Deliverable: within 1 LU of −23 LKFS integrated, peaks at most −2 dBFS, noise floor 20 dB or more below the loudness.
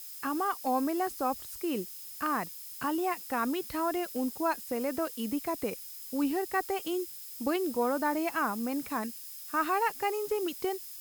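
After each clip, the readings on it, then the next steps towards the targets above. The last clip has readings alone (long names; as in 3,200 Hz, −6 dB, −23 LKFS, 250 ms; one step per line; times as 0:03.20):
interfering tone 5,100 Hz; level of the tone −56 dBFS; background noise floor −45 dBFS; target noise floor −52 dBFS; integrated loudness −32.0 LKFS; sample peak −16.5 dBFS; target loudness −23.0 LKFS
→ notch filter 5,100 Hz, Q 30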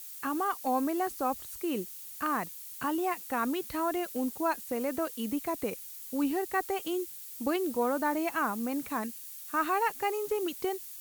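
interfering tone none found; background noise floor −45 dBFS; target noise floor −52 dBFS
→ noise reduction from a noise print 7 dB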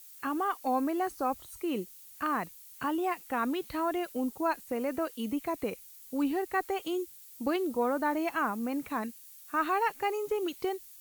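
background noise floor −52 dBFS; target noise floor −53 dBFS
→ noise reduction from a noise print 6 dB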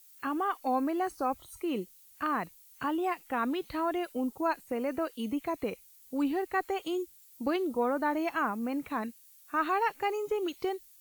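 background noise floor −58 dBFS; integrated loudness −32.5 LKFS; sample peak −17.5 dBFS; target loudness −23.0 LKFS
→ level +9.5 dB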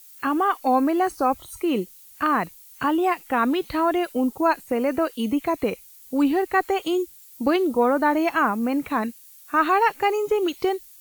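integrated loudness −23.0 LKFS; sample peak −8.0 dBFS; background noise floor −48 dBFS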